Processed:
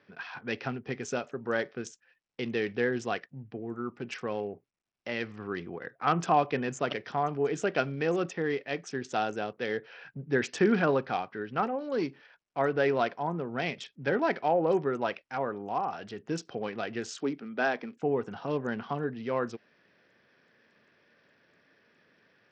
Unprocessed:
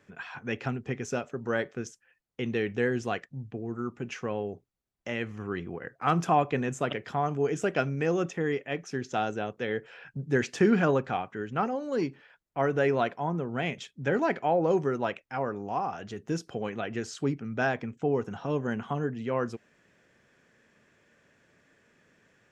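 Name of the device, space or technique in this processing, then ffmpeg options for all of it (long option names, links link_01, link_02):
Bluetooth headset: -filter_complex "[0:a]asettb=1/sr,asplit=3[link_01][link_02][link_03];[link_01]atrim=end=17.174[link_04];[link_02]atrim=start=17.17:end=18.03,asetpts=PTS-STARTPTS,afade=type=in:duration=0.004:curve=qsin,afade=type=out:start_time=0.856:duration=0.004:curve=qsin,highpass=frequency=190:width=0.5412,highpass=frequency=190:width=1.3066[link_05];[link_03]atrim=start=18.026[link_06];[link_04][link_05]acrossfade=duration=0.004:curve1=hsin:curve2=qsin[link_07];[link_07][link_06]acrossfade=duration=0.004:curve1=qsin:curve2=hsin,highpass=frequency=210:poles=1,aresample=16000,aresample=44100" -ar 44100 -c:a sbc -b:a 64k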